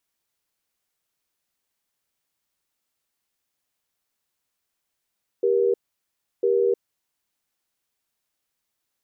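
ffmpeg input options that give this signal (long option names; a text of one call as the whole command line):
ffmpeg -f lavfi -i "aevalsrc='0.1*(sin(2*PI*393*t)+sin(2*PI*475*t))*clip(min(mod(t,1),0.31-mod(t,1))/0.005,0,1)':duration=1.51:sample_rate=44100" out.wav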